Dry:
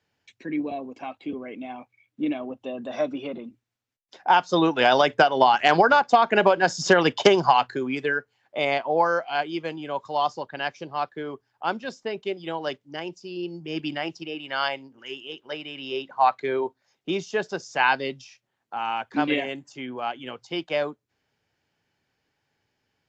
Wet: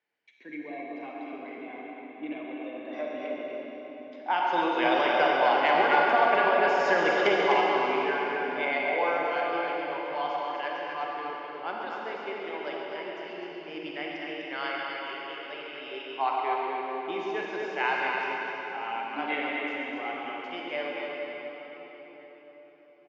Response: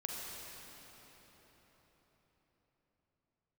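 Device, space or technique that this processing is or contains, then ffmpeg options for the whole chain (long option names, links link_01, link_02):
station announcement: -filter_complex "[0:a]highpass=310,lowpass=3600,equalizer=frequency=2100:width_type=o:width=0.29:gain=8.5,aecho=1:1:137|250.7:0.316|0.501[link_01];[1:a]atrim=start_sample=2205[link_02];[link_01][link_02]afir=irnorm=-1:irlink=0,volume=-6.5dB"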